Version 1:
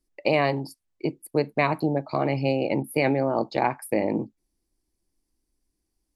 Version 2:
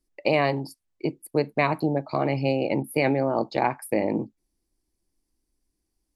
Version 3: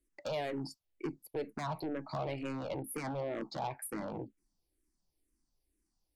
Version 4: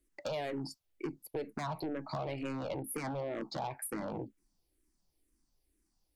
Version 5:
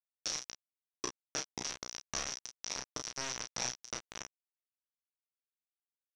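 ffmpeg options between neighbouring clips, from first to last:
-af anull
-filter_complex "[0:a]acompressor=threshold=0.0501:ratio=2.5,asoftclip=type=tanh:threshold=0.0376,asplit=2[s0][s1];[s1]afreqshift=-2.1[s2];[s0][s2]amix=inputs=2:normalize=1,volume=0.891"
-af "acompressor=threshold=0.0112:ratio=2.5,volume=1.5"
-filter_complex "[0:a]acrusher=bits=4:mix=0:aa=0.000001,lowpass=f=5800:t=q:w=12,asplit=2[s0][s1];[s1]aecho=0:1:17|33|48:0.299|0.668|0.237[s2];[s0][s2]amix=inputs=2:normalize=0,volume=0.596"

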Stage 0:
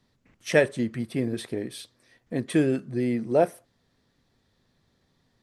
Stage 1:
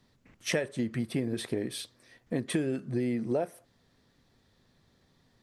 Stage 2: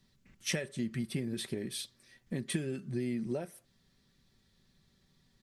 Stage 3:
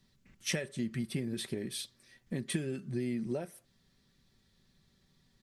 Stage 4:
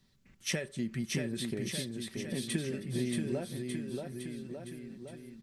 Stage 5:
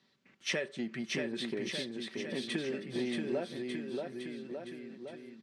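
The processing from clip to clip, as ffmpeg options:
-af "acompressor=threshold=0.0398:ratio=10,volume=1.26"
-af "equalizer=f=680:w=0.46:g=-10.5,aecho=1:1:5.2:0.4"
-af anull
-af "aecho=1:1:630|1197|1707|2167|2580:0.631|0.398|0.251|0.158|0.1"
-filter_complex "[0:a]asplit=2[s0][s1];[s1]asoftclip=type=tanh:threshold=0.0355,volume=0.562[s2];[s0][s2]amix=inputs=2:normalize=0,highpass=300,lowpass=4200"

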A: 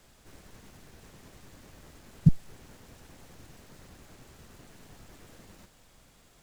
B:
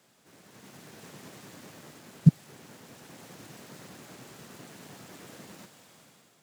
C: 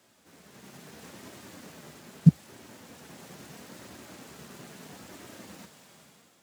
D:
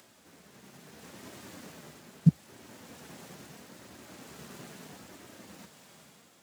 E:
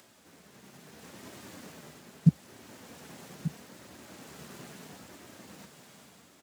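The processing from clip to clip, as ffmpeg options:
-af "highpass=f=130:w=0.5412,highpass=f=130:w=1.3066,dynaudnorm=f=250:g=5:m=3.16,volume=0.668"
-af "equalizer=f=73:t=o:w=0.38:g=8,flanger=delay=3.1:depth=2:regen=-51:speed=0.76:shape=sinusoidal,volume=1.78"
-af "tremolo=f=0.66:d=0.37,acompressor=mode=upward:threshold=0.002:ratio=2.5"
-af "aecho=1:1:1187:0.224"

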